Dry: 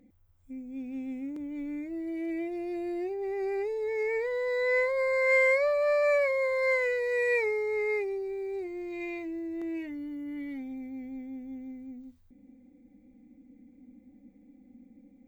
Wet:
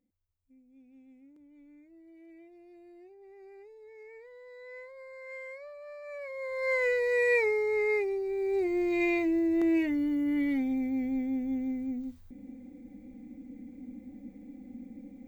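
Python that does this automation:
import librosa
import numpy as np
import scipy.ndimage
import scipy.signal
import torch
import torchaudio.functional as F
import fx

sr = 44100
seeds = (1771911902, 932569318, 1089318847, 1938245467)

y = fx.gain(x, sr, db=fx.line((6.04, -20.0), (6.4, -10.0), (6.88, 1.5), (8.24, 1.5), (8.74, 9.0)))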